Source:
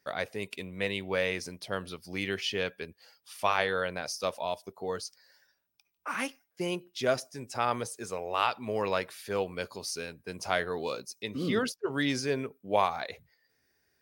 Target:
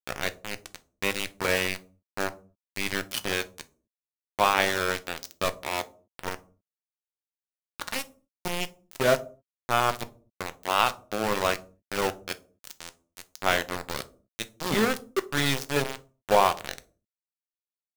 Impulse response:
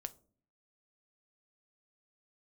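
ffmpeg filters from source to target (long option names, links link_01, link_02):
-filter_complex "[0:a]aeval=exprs='0.316*(cos(1*acos(clip(val(0)/0.316,-1,1)))-cos(1*PI/2))+0.0316*(cos(2*acos(clip(val(0)/0.316,-1,1)))-cos(2*PI/2))+0.00316*(cos(3*acos(clip(val(0)/0.316,-1,1)))-cos(3*PI/2))+0.00316*(cos(8*acos(clip(val(0)/0.316,-1,1)))-cos(8*PI/2))':channel_layout=same,atempo=0.78,aeval=exprs='val(0)*gte(abs(val(0)),0.0473)':channel_layout=same[link_01];[1:a]atrim=start_sample=2205,afade=type=out:start_time=0.31:duration=0.01,atrim=end_sample=14112[link_02];[link_01][link_02]afir=irnorm=-1:irlink=0,volume=8.5dB"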